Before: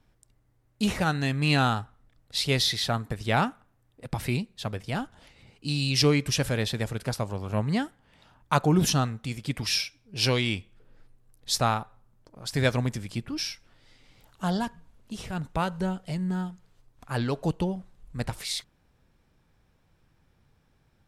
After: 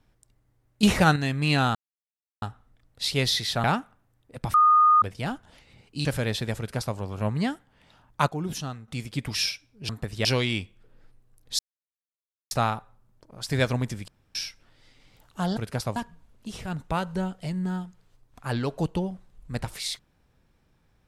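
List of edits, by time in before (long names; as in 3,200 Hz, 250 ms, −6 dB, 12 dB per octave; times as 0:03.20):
0:00.83–0:01.16: clip gain +6.5 dB
0:01.75: splice in silence 0.67 s
0:02.97–0:03.33: move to 0:10.21
0:04.23–0:04.71: beep over 1,230 Hz −14 dBFS
0:05.74–0:06.37: remove
0:06.90–0:07.29: duplicate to 0:14.61
0:08.60–0:09.20: clip gain −9.5 dB
0:11.55: splice in silence 0.92 s
0:13.12–0:13.39: fill with room tone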